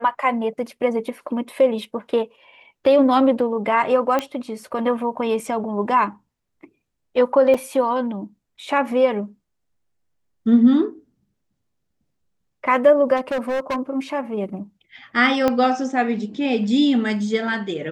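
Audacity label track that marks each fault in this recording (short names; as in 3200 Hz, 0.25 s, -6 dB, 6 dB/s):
4.190000	4.190000	pop -9 dBFS
7.540000	7.540000	gap 4.7 ms
13.160000	13.770000	clipped -20 dBFS
15.480000	15.480000	pop -7 dBFS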